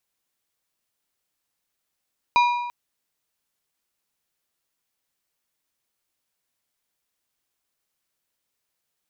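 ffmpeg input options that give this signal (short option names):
-f lavfi -i "aevalsrc='0.224*pow(10,-3*t/1.16)*sin(2*PI*967*t)+0.0944*pow(10,-3*t/0.881)*sin(2*PI*2417.5*t)+0.0398*pow(10,-3*t/0.765)*sin(2*PI*3868*t)+0.0168*pow(10,-3*t/0.716)*sin(2*PI*4835*t)+0.00708*pow(10,-3*t/0.662)*sin(2*PI*6285.5*t)':d=0.34:s=44100"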